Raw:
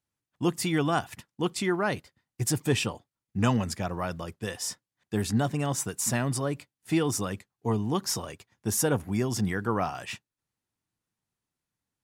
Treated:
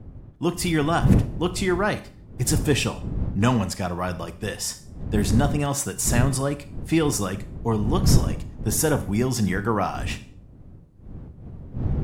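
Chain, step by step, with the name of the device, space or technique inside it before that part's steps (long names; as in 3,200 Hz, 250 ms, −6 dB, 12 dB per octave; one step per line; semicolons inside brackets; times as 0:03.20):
four-comb reverb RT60 0.42 s, combs from 30 ms, DRR 12 dB
smartphone video outdoors (wind on the microphone 140 Hz −31 dBFS; automatic gain control gain up to 4.5 dB; AAC 96 kbit/s 48,000 Hz)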